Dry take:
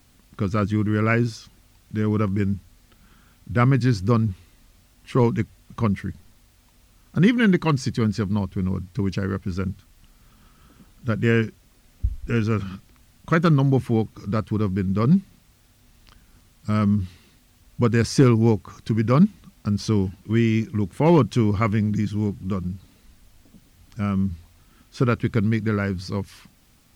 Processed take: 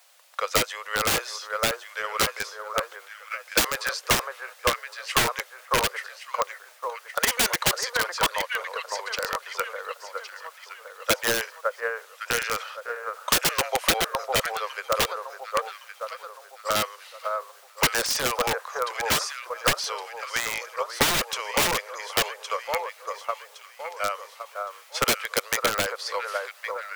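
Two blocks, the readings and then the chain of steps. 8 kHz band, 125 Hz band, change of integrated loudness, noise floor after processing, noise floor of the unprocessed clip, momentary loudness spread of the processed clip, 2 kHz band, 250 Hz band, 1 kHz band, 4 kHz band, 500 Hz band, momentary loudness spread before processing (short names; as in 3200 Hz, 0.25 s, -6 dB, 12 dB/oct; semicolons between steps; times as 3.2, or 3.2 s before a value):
+15.0 dB, -21.0 dB, -4.0 dB, -51 dBFS, -57 dBFS, 13 LU, +5.5 dB, -18.5 dB, +4.0 dB, +12.0 dB, -3.0 dB, 13 LU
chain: steep high-pass 510 Hz 72 dB/oct; on a send: echo with dull and thin repeats by turns 0.557 s, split 1500 Hz, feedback 61%, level -4 dB; on the sum: wrapped overs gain 22.5 dB; transient shaper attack +8 dB, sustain +4 dB; gain +3.5 dB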